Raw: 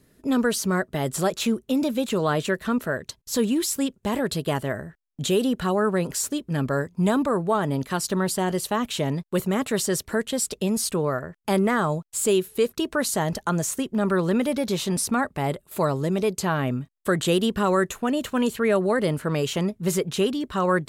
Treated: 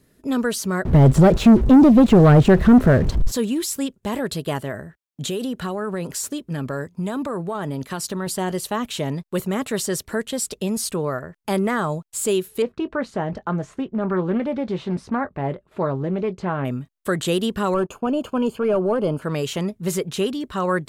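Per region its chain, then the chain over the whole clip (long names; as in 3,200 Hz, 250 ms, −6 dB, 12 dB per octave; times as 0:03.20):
0:00.85–0:03.32: converter with a step at zero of −37 dBFS + spectral tilt −4.5 dB per octave + leveller curve on the samples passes 2
0:04.61–0:08.27: high-pass filter 55 Hz + downward compressor, threshold −22 dBFS
0:12.62–0:16.65: Bessel low-pass filter 1,700 Hz + double-tracking delay 22 ms −13.5 dB + highs frequency-modulated by the lows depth 0.18 ms
0:17.74–0:19.22: spectral tilt +2.5 dB per octave + leveller curve on the samples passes 2 + moving average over 23 samples
whole clip: no processing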